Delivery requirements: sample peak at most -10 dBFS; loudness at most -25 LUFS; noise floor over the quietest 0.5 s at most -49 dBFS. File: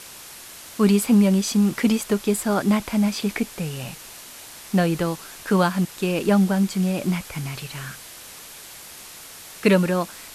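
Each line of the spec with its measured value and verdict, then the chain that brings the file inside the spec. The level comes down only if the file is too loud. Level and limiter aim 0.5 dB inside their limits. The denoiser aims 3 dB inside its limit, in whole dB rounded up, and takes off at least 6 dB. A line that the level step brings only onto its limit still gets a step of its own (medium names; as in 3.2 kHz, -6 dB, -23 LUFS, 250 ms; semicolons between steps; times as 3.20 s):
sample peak -5.5 dBFS: fail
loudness -22.0 LUFS: fail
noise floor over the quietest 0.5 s -41 dBFS: fail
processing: noise reduction 8 dB, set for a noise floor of -41 dBFS; trim -3.5 dB; peak limiter -10.5 dBFS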